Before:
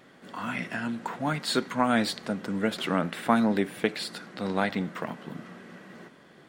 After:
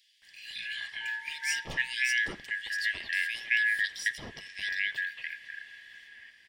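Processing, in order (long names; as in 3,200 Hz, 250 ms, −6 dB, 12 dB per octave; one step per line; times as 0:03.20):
band-splitting scrambler in four parts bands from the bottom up 4123
0:00.78–0:01.70: steady tone 910 Hz −48 dBFS
multiband delay without the direct sound highs, lows 220 ms, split 3,100 Hz
level −3 dB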